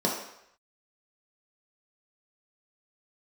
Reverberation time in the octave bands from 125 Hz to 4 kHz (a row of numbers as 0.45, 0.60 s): 0.55, 0.55, 0.70, 0.75, 0.80, 0.70 s